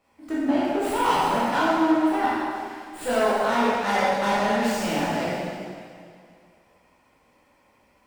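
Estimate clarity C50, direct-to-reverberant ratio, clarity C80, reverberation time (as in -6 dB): -4.0 dB, -10.0 dB, -1.5 dB, 2.2 s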